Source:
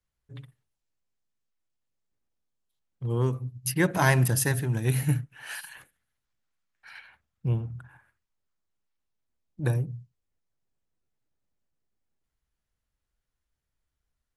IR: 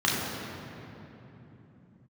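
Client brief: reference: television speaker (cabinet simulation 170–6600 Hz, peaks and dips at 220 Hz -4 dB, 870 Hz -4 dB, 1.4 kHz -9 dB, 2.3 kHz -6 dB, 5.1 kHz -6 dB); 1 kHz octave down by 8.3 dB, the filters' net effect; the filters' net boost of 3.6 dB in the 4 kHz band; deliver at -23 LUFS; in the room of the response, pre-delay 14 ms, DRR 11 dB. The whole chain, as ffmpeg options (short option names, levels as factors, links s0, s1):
-filter_complex "[0:a]equalizer=f=1000:t=o:g=-6.5,equalizer=f=4000:t=o:g=8.5,asplit=2[s0][s1];[1:a]atrim=start_sample=2205,adelay=14[s2];[s1][s2]afir=irnorm=-1:irlink=0,volume=0.0501[s3];[s0][s3]amix=inputs=2:normalize=0,highpass=f=170:w=0.5412,highpass=f=170:w=1.3066,equalizer=f=220:t=q:w=4:g=-4,equalizer=f=870:t=q:w=4:g=-4,equalizer=f=1400:t=q:w=4:g=-9,equalizer=f=2300:t=q:w=4:g=-6,equalizer=f=5100:t=q:w=4:g=-6,lowpass=f=6600:w=0.5412,lowpass=f=6600:w=1.3066,volume=3.35"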